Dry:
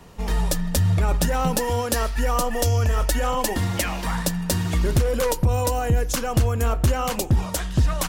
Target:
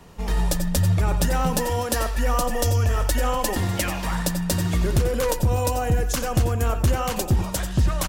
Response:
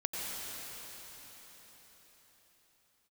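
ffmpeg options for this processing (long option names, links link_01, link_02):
-filter_complex "[0:a]aecho=1:1:245:0.126[link_01];[1:a]atrim=start_sample=2205,atrim=end_sample=4410[link_02];[link_01][link_02]afir=irnorm=-1:irlink=0"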